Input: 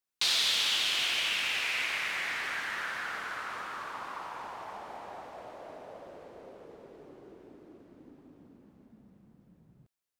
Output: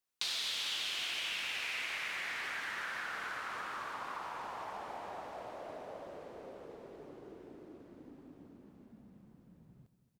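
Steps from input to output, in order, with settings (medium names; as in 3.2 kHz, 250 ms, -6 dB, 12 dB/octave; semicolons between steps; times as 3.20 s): compression 2.5:1, threshold -39 dBFS, peak gain reduction 10 dB; on a send: feedback delay 226 ms, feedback 54%, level -14 dB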